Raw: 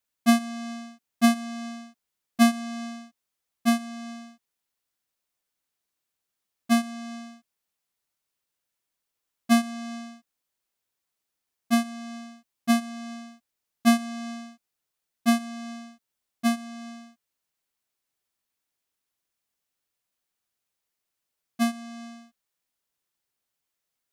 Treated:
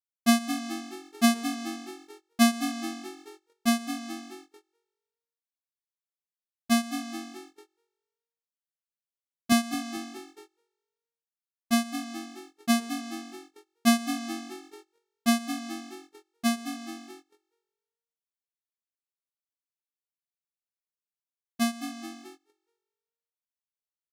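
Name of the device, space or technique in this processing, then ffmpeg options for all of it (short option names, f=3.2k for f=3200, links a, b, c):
presence and air boost: -filter_complex "[0:a]asettb=1/sr,asplit=3[a][b][c];[a]atrim=end=9.524[d];[b]atrim=start=9.52:end=9.97,asetpts=PTS-STARTPTS,afade=t=in:d=0.004:c=qsin,afade=t=out:st=0.446:d=0.004:c=qsin,highpass=150[e];[c]atrim=start=9.966[f];[d][e]acrossfade=d=0.004:c1=hsin:c2=qsin[g];[g][f]acrossfade=d=0.004:c1=qsin:c2=hsin,asplit=6[h][i][j][k][l][m];[i]adelay=214,afreqshift=46,volume=-11dB[n];[j]adelay=428,afreqshift=92,volume=-17dB[o];[k]adelay=642,afreqshift=138,volume=-23dB[p];[l]adelay=856,afreqshift=184,volume=-29.1dB[q];[m]adelay=1070,afreqshift=230,volume=-35.1dB[r];[h][n][o][p][q][r]amix=inputs=6:normalize=0,agate=range=-22dB:threshold=-46dB:ratio=16:detection=peak,equalizer=f=4.6k:t=o:w=1.8:g=4,highshelf=f=9.6k:g=7,volume=-2.5dB"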